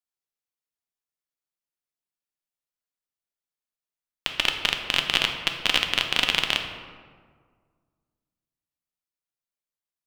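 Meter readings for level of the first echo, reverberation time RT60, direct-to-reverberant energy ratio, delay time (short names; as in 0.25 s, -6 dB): none, 1.8 s, 4.0 dB, none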